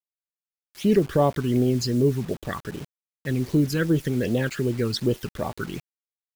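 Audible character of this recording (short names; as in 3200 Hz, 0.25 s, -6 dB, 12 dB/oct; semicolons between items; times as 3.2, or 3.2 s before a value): phasing stages 12, 2.6 Hz, lowest notch 580–1900 Hz; a quantiser's noise floor 8-bit, dither none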